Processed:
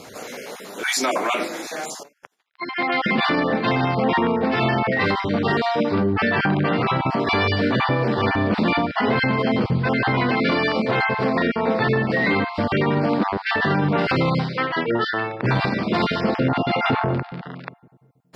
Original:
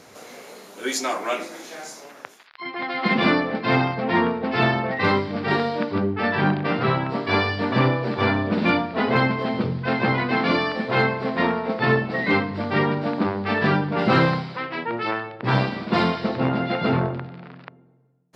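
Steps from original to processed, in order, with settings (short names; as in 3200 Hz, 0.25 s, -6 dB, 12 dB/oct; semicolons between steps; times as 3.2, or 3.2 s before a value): random spectral dropouts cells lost 20%; limiter -19 dBFS, peak gain reduction 11.5 dB; 2.03–2.68 upward expander 2.5:1, over -54 dBFS; gain +7.5 dB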